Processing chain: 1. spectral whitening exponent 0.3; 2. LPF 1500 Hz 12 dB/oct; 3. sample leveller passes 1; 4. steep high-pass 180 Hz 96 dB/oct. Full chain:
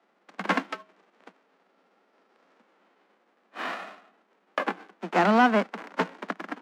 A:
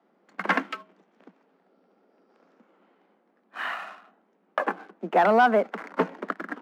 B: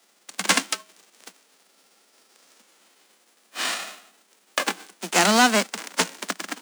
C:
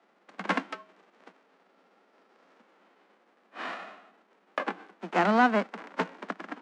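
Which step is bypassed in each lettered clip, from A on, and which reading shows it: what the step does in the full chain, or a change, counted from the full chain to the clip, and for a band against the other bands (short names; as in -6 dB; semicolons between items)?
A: 1, 500 Hz band +6.0 dB; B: 2, 8 kHz band +26.0 dB; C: 3, loudness change -2.5 LU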